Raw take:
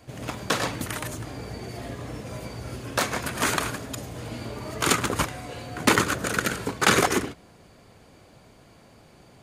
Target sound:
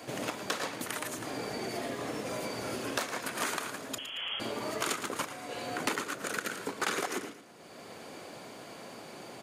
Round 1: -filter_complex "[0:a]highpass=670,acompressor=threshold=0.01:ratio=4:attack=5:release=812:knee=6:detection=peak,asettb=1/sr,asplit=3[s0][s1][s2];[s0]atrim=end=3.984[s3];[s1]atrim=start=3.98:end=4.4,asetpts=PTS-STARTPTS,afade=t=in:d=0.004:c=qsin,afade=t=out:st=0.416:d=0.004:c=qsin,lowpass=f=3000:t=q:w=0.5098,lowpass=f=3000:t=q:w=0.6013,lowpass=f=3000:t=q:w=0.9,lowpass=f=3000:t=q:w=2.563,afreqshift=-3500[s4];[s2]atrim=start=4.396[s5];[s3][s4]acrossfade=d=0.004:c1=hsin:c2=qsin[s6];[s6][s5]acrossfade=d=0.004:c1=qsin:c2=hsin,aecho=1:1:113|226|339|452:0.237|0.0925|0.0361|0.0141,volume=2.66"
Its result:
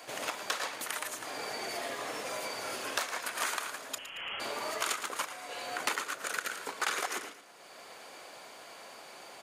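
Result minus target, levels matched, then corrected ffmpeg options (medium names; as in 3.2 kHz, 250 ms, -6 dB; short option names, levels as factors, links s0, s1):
250 Hz band -10.5 dB
-filter_complex "[0:a]highpass=260,acompressor=threshold=0.01:ratio=4:attack=5:release=812:knee=6:detection=peak,asettb=1/sr,asplit=3[s0][s1][s2];[s0]atrim=end=3.984[s3];[s1]atrim=start=3.98:end=4.4,asetpts=PTS-STARTPTS,afade=t=in:d=0.004:c=qsin,afade=t=out:st=0.416:d=0.004:c=qsin,lowpass=f=3000:t=q:w=0.5098,lowpass=f=3000:t=q:w=0.6013,lowpass=f=3000:t=q:w=0.9,lowpass=f=3000:t=q:w=2.563,afreqshift=-3500[s4];[s2]atrim=start=4.396[s5];[s3][s4]acrossfade=d=0.004:c1=hsin:c2=qsin[s6];[s6][s5]acrossfade=d=0.004:c1=qsin:c2=hsin,aecho=1:1:113|226|339|452:0.237|0.0925|0.0361|0.0141,volume=2.66"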